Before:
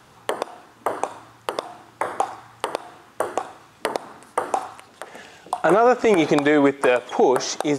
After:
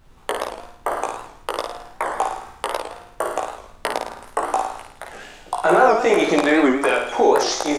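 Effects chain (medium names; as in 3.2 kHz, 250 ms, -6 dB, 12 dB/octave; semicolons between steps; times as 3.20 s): high-pass 370 Hz 6 dB/octave; expander -44 dBFS; doubling 17 ms -3 dB; added noise brown -49 dBFS; on a send: flutter echo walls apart 9.2 m, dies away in 0.65 s; on the sum: warped record 78 rpm, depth 160 cents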